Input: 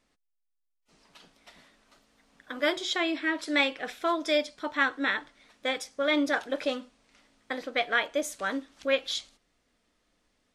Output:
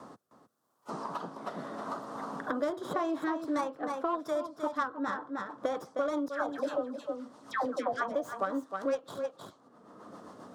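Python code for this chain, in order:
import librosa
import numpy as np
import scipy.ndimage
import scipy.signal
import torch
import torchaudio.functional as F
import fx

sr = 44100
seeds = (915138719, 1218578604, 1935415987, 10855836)

y = fx.tracing_dist(x, sr, depth_ms=0.12)
y = scipy.signal.sosfilt(scipy.signal.butter(4, 110.0, 'highpass', fs=sr, output='sos'), y)
y = fx.high_shelf_res(y, sr, hz=1600.0, db=-12.5, q=3.0)
y = fx.rider(y, sr, range_db=10, speed_s=0.5)
y = fx.cheby_harmonics(y, sr, harmonics=(3,), levels_db=(-24,), full_scale_db=-13.5)
y = fx.dispersion(y, sr, late='lows', ms=133.0, hz=1100.0, at=(6.28, 8.15))
y = fx.rotary_switch(y, sr, hz=0.85, then_hz=7.5, switch_at_s=3.18)
y = y + 10.0 ** (-10.5 / 20.0) * np.pad(y, (int(310 * sr / 1000.0), 0))[:len(y)]
y = fx.band_squash(y, sr, depth_pct=100)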